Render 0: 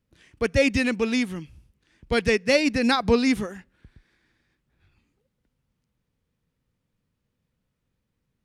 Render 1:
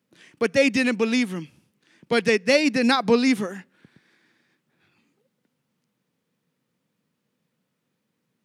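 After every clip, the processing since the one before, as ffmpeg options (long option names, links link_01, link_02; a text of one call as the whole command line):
ffmpeg -i in.wav -filter_complex "[0:a]highpass=frequency=160:width=0.5412,highpass=frequency=160:width=1.3066,asplit=2[link_01][link_02];[link_02]acompressor=threshold=-30dB:ratio=6,volume=-2dB[link_03];[link_01][link_03]amix=inputs=2:normalize=0" out.wav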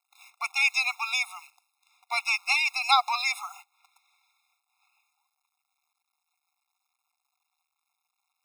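ffmpeg -i in.wav -af "acrusher=bits=9:dc=4:mix=0:aa=0.000001,afftfilt=real='re*eq(mod(floor(b*sr/1024/700),2),1)':imag='im*eq(mod(floor(b*sr/1024/700),2),1)':win_size=1024:overlap=0.75,volume=2.5dB" out.wav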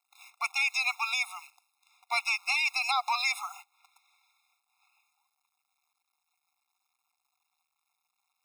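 ffmpeg -i in.wav -af "alimiter=limit=-18dB:level=0:latency=1:release=100" out.wav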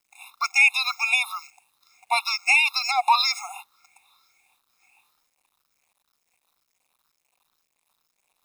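ffmpeg -i in.wav -af "afftfilt=real='re*pow(10,16/40*sin(2*PI*(0.56*log(max(b,1)*sr/1024/100)/log(2)-(2.1)*(pts-256)/sr)))':imag='im*pow(10,16/40*sin(2*PI*(0.56*log(max(b,1)*sr/1024/100)/log(2)-(2.1)*(pts-256)/sr)))':win_size=1024:overlap=0.75,acrusher=bits=11:mix=0:aa=0.000001,volume=4.5dB" out.wav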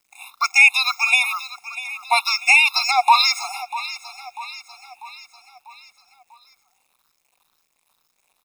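ffmpeg -i in.wav -af "aecho=1:1:644|1288|1932|2576|3220:0.178|0.0942|0.05|0.0265|0.014,volume=5dB" out.wav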